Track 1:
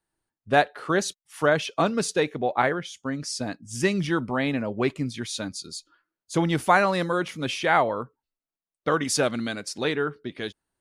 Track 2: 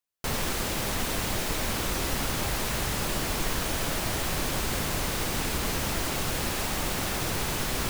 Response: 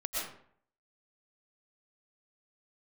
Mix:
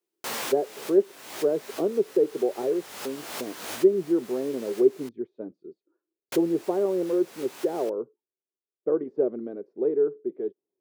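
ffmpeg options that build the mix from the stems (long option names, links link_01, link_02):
-filter_complex "[0:a]deesser=0.95,lowpass=frequency=390:width_type=q:width=4.6,equalizer=frequency=280:width_type=o:width=0.25:gain=-5,volume=-2dB,asplit=2[link_01][link_02];[1:a]flanger=delay=17.5:depth=3.4:speed=2.9,volume=3dB,asplit=3[link_03][link_04][link_05];[link_03]atrim=end=5.09,asetpts=PTS-STARTPTS,afade=type=out:start_time=5.086:duration=0.004:curve=hsin[link_06];[link_04]atrim=start=5.09:end=6.32,asetpts=PTS-STARTPTS,volume=0[link_07];[link_05]atrim=start=6.32,asetpts=PTS-STARTPTS,afade=type=in:duration=0.004:curve=hsin[link_08];[link_06][link_07][link_08]concat=n=3:v=0:a=1[link_09];[link_02]apad=whole_len=348169[link_10];[link_09][link_10]sidechaincompress=threshold=-38dB:ratio=10:attack=16:release=290[link_11];[link_01][link_11]amix=inputs=2:normalize=0,highpass=360"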